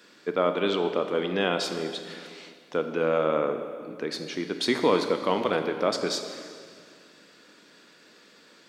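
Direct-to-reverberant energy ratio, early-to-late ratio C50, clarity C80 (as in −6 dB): 7.0 dB, 8.0 dB, 9.0 dB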